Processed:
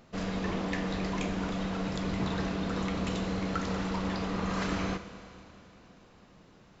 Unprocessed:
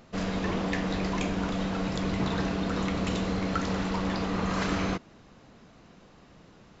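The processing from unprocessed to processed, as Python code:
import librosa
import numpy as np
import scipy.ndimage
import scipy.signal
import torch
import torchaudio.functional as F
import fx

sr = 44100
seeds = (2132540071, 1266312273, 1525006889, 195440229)

y = fx.rev_schroeder(x, sr, rt60_s=3.2, comb_ms=26, drr_db=10.5)
y = F.gain(torch.from_numpy(y), -3.5).numpy()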